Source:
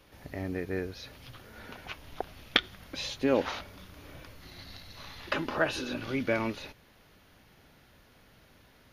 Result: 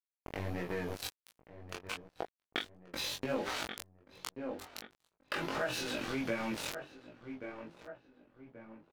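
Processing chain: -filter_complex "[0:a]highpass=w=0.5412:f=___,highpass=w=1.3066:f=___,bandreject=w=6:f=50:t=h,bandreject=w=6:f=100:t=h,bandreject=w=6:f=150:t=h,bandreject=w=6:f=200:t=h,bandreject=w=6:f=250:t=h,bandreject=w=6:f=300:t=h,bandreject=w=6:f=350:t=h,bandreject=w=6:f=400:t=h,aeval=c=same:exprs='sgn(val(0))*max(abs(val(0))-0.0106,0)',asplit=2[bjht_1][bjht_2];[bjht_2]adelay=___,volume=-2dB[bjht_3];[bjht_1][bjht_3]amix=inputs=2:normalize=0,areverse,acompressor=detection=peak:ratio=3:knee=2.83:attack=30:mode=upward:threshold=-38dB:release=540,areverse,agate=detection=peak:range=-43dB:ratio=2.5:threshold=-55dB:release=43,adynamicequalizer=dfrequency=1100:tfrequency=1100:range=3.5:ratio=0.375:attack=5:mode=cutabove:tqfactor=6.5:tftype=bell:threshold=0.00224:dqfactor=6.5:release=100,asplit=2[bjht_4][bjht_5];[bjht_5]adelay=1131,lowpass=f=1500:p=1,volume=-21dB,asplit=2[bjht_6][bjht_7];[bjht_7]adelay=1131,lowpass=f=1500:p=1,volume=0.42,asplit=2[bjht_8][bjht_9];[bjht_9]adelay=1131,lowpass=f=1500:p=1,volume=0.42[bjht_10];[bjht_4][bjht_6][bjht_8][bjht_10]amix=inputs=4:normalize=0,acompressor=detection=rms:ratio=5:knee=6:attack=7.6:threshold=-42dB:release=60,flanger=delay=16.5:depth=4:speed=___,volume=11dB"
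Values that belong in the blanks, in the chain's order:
67, 67, 23, 1.4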